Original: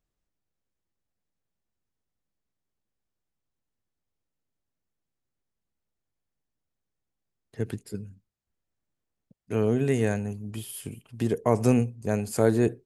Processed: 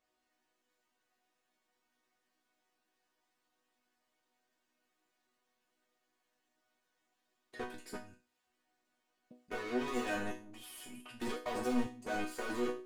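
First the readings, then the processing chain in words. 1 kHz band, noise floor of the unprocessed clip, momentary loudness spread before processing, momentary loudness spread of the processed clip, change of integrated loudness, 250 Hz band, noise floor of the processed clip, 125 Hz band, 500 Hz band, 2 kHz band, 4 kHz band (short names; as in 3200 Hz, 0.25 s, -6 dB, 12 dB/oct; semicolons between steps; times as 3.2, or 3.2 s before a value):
-5.0 dB, -85 dBFS, 15 LU, 14 LU, -12.5 dB, -12.0 dB, -83 dBFS, -26.5 dB, -13.5 dB, -2.5 dB, -2.0 dB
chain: overdrive pedal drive 42 dB, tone 2700 Hz, clips at -7.5 dBFS; level quantiser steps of 16 dB; resonator bank B3 major, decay 0.35 s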